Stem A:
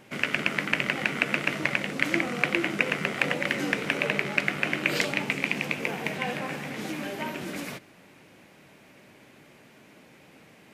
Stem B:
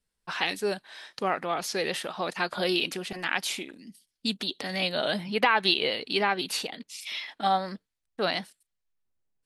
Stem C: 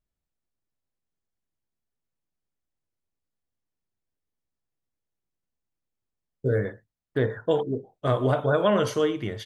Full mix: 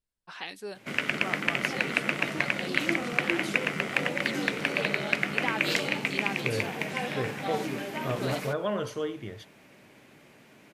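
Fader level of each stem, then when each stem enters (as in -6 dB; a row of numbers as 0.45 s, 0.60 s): -1.5 dB, -10.5 dB, -8.5 dB; 0.75 s, 0.00 s, 0.00 s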